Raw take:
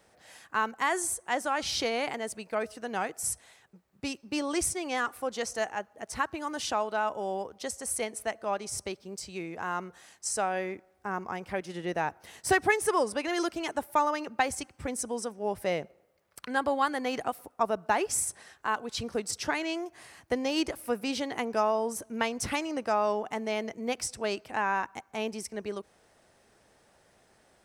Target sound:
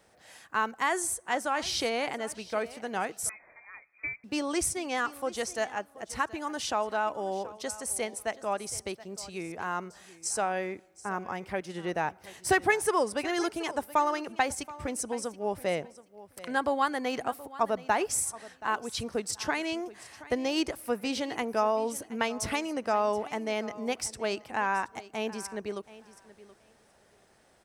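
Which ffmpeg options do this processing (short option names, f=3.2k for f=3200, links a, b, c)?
-filter_complex "[0:a]asplit=2[a][b];[b]aecho=0:1:726|1452:0.126|0.0214[c];[a][c]amix=inputs=2:normalize=0,asettb=1/sr,asplit=3[d][e][f];[d]atrim=end=3.294[g];[e]atrim=start=3.29:end=4.24,asetpts=PTS-STARTPTS,afade=t=in:d=0.004:c=qsin,afade=t=out:st=0.946:d=0.004:c=qsin,lowpass=f=2.2k:t=q:w=0.5098,lowpass=f=2.2k:t=q:w=0.6013,lowpass=f=2.2k:t=q:w=0.9,lowpass=f=2.2k:t=q:w=2.563,afreqshift=-2600[h];[f]atrim=start=4.236[i];[g][h]acrossfade=d=0.004:c1=hsin:c2=qsin[j];[j][i]acrossfade=d=0.004:c1=qsin:c2=hsin"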